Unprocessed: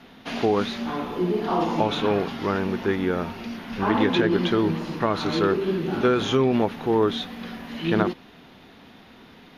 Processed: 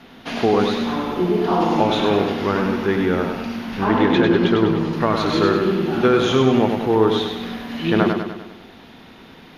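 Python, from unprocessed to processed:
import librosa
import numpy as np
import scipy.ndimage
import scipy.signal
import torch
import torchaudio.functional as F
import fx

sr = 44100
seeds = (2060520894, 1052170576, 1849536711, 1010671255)

p1 = fx.high_shelf(x, sr, hz=3900.0, db=-7.0, at=(3.84, 4.93))
p2 = p1 + fx.echo_feedback(p1, sr, ms=99, feedback_pct=53, wet_db=-5.0, dry=0)
y = p2 * librosa.db_to_amplitude(3.5)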